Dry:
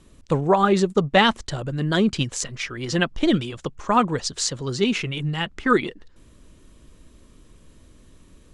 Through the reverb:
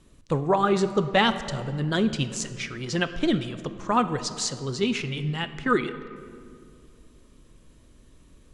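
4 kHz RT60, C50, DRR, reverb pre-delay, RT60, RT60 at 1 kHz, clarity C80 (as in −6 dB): 1.3 s, 12.0 dB, 10.5 dB, 6 ms, 2.3 s, 2.1 s, 13.0 dB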